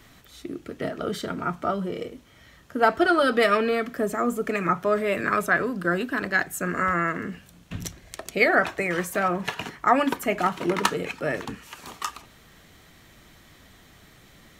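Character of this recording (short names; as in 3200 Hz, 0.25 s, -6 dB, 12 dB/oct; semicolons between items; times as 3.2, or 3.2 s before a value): noise floor -53 dBFS; spectral tilt -3.5 dB/oct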